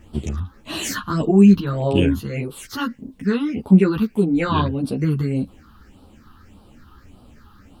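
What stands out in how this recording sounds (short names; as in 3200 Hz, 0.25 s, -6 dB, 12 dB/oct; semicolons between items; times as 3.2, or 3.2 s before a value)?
phasing stages 6, 1.7 Hz, lowest notch 560–1900 Hz; a quantiser's noise floor 12-bit, dither none; a shimmering, thickened sound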